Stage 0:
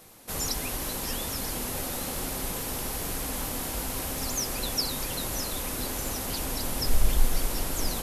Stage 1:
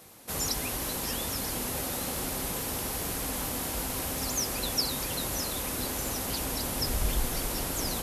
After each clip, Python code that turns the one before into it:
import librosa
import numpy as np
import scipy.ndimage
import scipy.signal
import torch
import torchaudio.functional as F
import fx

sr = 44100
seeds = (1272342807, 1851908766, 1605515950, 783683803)

y = scipy.signal.sosfilt(scipy.signal.butter(2, 44.0, 'highpass', fs=sr, output='sos'), x)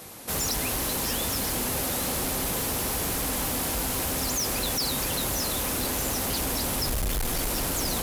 y = 10.0 ** (-33.5 / 20.0) * np.tanh(x / 10.0 ** (-33.5 / 20.0))
y = y * 10.0 ** (9.0 / 20.0)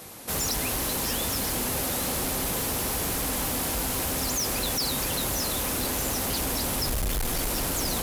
y = x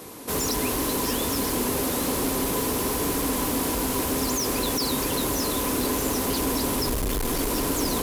y = fx.small_body(x, sr, hz=(290.0, 410.0, 1000.0), ring_ms=35, db=10)